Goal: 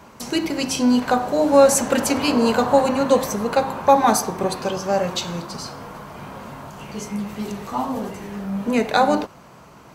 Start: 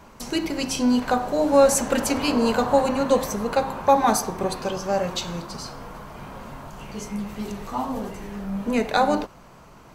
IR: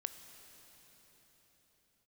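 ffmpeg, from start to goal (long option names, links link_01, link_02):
-af "highpass=77,volume=3dB"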